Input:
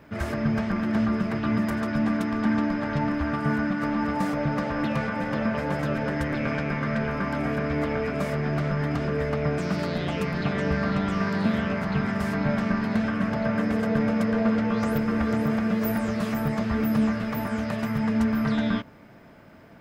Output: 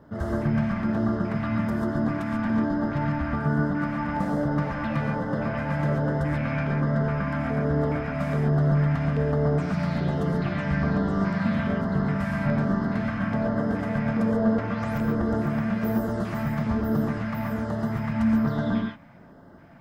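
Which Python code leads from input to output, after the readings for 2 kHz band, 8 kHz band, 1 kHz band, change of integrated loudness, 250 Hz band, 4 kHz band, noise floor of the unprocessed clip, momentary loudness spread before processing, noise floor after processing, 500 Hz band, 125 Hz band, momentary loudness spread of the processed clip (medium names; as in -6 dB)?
-2.5 dB, no reading, -0.5 dB, 0.0 dB, -0.5 dB, -6.0 dB, -49 dBFS, 4 LU, -40 dBFS, -0.5 dB, +4.0 dB, 4 LU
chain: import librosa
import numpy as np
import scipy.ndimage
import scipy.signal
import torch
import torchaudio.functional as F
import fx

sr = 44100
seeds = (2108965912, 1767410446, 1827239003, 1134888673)

y = fx.high_shelf(x, sr, hz=2500.0, db=-10.0)
y = fx.filter_lfo_notch(y, sr, shape='square', hz=1.2, low_hz=400.0, high_hz=2400.0, q=1.1)
y = fx.rev_gated(y, sr, seeds[0], gate_ms=160, shape='rising', drr_db=1.5)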